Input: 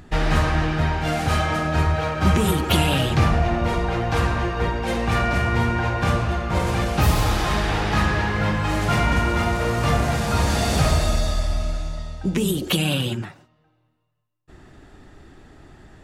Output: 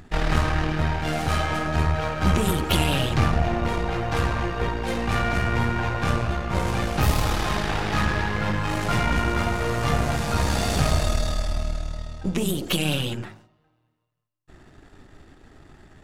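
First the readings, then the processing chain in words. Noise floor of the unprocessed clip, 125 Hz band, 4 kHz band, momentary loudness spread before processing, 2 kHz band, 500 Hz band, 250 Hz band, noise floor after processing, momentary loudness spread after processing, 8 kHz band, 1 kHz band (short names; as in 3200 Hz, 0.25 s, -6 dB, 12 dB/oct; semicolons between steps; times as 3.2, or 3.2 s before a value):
-64 dBFS, -3.0 dB, -2.0 dB, 5 LU, -2.5 dB, -3.0 dB, -3.0 dB, -67 dBFS, 5 LU, -2.0 dB, -2.5 dB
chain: half-wave gain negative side -7 dB; de-hum 53.25 Hz, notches 20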